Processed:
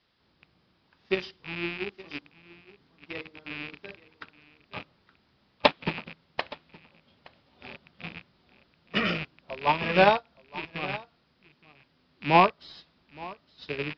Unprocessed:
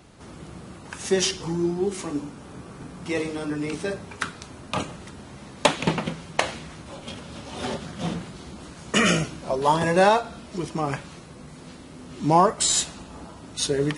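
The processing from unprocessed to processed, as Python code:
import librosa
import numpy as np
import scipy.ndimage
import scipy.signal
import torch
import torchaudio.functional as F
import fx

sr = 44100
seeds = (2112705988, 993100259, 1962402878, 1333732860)

y = fx.rattle_buzz(x, sr, strikes_db=-33.0, level_db=-11.0)
y = fx.dmg_noise_colour(y, sr, seeds[0], colour='white', level_db=-40.0)
y = scipy.signal.sosfilt(scipy.signal.cheby1(6, 1.0, 5000.0, 'lowpass', fs=sr, output='sos'), y)
y = y + 10.0 ** (-8.5 / 20.0) * np.pad(y, (int(869 * sr / 1000.0), 0))[:len(y)]
y = fx.upward_expand(y, sr, threshold_db=-32.0, expansion=2.5)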